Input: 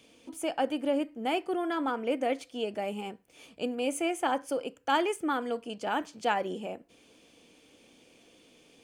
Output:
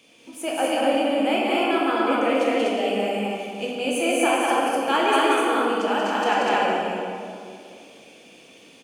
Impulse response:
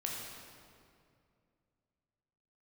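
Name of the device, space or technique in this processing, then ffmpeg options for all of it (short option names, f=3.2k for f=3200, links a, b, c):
stadium PA: -filter_complex "[0:a]highpass=f=240:p=1,equalizer=f=2.5k:t=o:w=0.32:g=4,aecho=1:1:183.7|247.8:0.708|0.891[a];[1:a]atrim=start_sample=2205[b];[a][b]afir=irnorm=-1:irlink=0,volume=5dB"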